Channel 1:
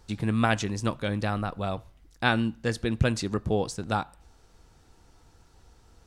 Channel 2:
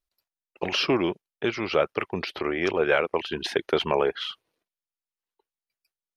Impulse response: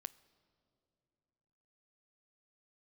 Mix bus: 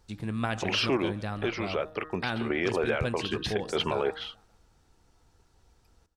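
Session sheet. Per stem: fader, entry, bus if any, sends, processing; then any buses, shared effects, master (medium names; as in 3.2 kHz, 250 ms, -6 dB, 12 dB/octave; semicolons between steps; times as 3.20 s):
-6.5 dB, 0.00 s, no send, echo send -16 dB, none
+1.5 dB, 0.00 s, no send, no echo send, tremolo saw down 1.6 Hz, depth 75%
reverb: none
echo: feedback delay 143 ms, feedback 42%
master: de-hum 156.1 Hz, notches 12; peak limiter -17 dBFS, peak gain reduction 8 dB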